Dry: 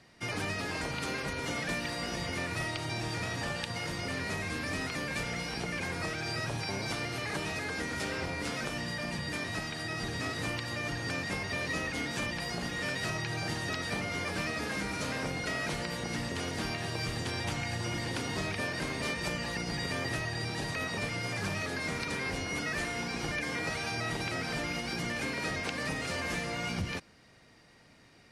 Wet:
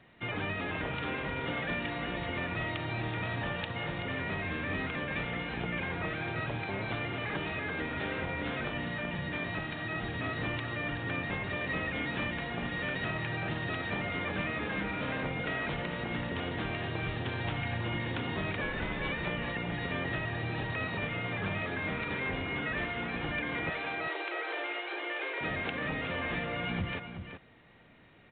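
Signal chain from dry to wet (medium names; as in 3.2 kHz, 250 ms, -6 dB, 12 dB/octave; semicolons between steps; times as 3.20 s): 18.61–19.12 s: frequency shift -94 Hz; 23.70–25.41 s: brick-wall FIR high-pass 310 Hz; echo from a far wall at 65 m, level -8 dB; µ-law 64 kbps 8 kHz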